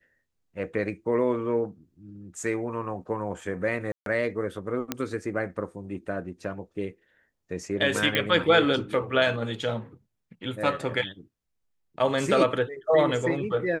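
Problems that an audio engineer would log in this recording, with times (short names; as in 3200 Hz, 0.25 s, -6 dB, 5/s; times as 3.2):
3.92–4.06 gap 0.142 s
4.92 pop -11 dBFS
8.15 pop -10 dBFS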